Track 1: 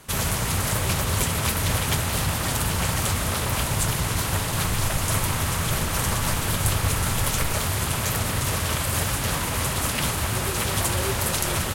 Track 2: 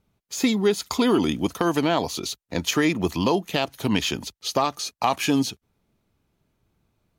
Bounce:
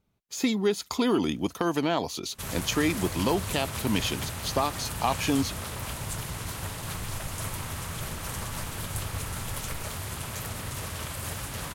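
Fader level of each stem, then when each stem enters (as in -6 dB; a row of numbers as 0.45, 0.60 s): -10.5, -4.5 dB; 2.30, 0.00 s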